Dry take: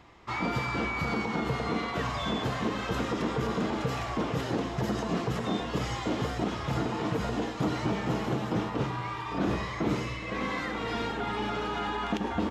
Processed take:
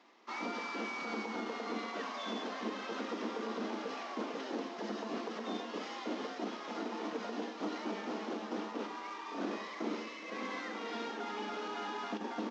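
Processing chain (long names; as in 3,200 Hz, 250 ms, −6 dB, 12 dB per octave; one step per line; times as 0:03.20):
variable-slope delta modulation 32 kbit/s
elliptic high-pass filter 220 Hz, stop band 40 dB
level −7 dB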